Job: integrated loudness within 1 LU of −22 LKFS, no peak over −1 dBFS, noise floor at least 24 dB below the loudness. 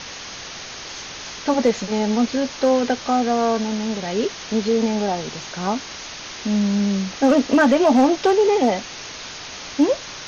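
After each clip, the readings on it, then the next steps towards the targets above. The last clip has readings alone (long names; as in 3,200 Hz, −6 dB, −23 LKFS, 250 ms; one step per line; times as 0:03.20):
share of clipped samples 0.5%; peaks flattened at −8.5 dBFS; background noise floor −35 dBFS; target noise floor −44 dBFS; integrated loudness −20.0 LKFS; sample peak −8.5 dBFS; target loudness −22.0 LKFS
→ clipped peaks rebuilt −8.5 dBFS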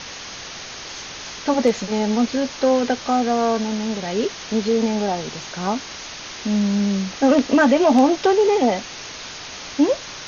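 share of clipped samples 0.0%; background noise floor −35 dBFS; target noise floor −44 dBFS
→ broadband denoise 9 dB, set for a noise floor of −35 dBFS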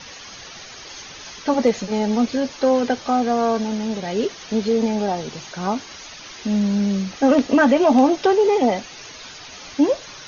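background noise floor −39 dBFS; target noise floor −44 dBFS
→ broadband denoise 6 dB, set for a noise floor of −39 dBFS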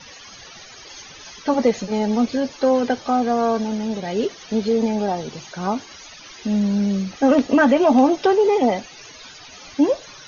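background noise floor −42 dBFS; target noise floor −44 dBFS
→ broadband denoise 6 dB, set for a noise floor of −42 dBFS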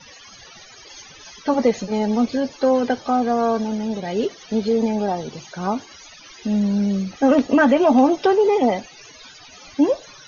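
background noise floor −45 dBFS; integrated loudness −20.0 LKFS; sample peak −3.5 dBFS; target loudness −22.0 LKFS
→ level −2 dB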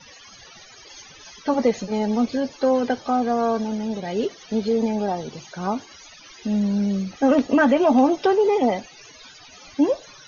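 integrated loudness −22.0 LKFS; sample peak −5.5 dBFS; background noise floor −47 dBFS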